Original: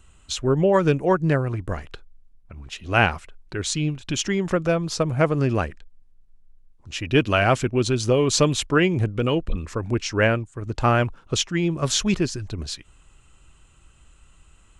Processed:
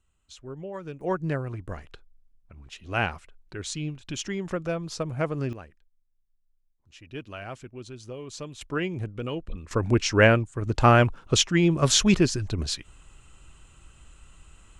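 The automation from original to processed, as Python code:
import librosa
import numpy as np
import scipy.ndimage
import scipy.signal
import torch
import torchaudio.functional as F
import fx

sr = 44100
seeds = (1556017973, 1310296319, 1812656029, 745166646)

y = fx.gain(x, sr, db=fx.steps((0.0, -19.0), (1.01, -8.0), (5.53, -19.5), (8.61, -10.0), (9.71, 2.0)))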